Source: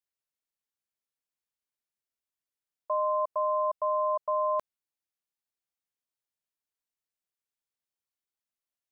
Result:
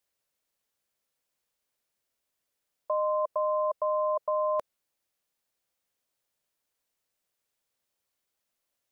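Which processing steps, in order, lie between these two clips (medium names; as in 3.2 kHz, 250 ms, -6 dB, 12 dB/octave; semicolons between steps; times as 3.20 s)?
peaking EQ 550 Hz +5.5 dB 0.56 oct; in parallel at +1.5 dB: compressor with a negative ratio -32 dBFS, ratio -0.5; on the sum: trim -5 dB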